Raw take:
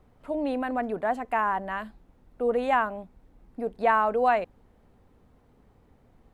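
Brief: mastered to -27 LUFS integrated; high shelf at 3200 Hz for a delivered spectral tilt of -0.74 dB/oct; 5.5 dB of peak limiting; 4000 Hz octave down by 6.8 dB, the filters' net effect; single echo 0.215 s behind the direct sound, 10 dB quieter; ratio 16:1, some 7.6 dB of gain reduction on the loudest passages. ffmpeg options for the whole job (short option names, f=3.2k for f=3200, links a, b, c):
-af "highshelf=f=3.2k:g=-5,equalizer=f=4k:t=o:g=-7,acompressor=threshold=-25dB:ratio=16,alimiter=limit=-23.5dB:level=0:latency=1,aecho=1:1:215:0.316,volume=6dB"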